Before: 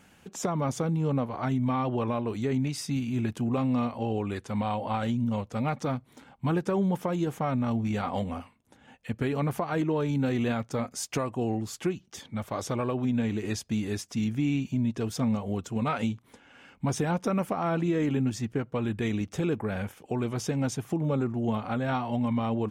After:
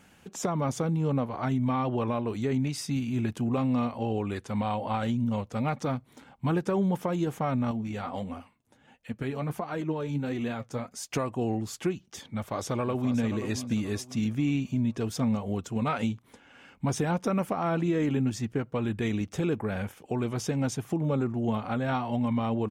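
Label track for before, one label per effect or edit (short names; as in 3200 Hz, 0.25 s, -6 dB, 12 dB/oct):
7.710000	11.110000	flange 1.5 Hz, delay 2.7 ms, depth 6.5 ms, regen +55%
12.210000	13.200000	echo throw 0.53 s, feedback 35%, level -10.5 dB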